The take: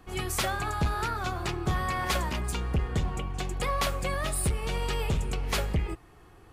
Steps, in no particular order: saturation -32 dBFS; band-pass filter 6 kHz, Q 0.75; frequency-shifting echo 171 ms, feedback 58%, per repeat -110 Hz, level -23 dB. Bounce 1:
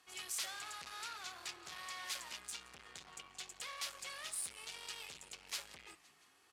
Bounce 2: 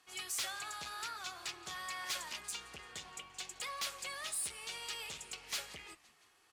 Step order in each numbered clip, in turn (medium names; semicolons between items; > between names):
frequency-shifting echo > saturation > band-pass filter; band-pass filter > frequency-shifting echo > saturation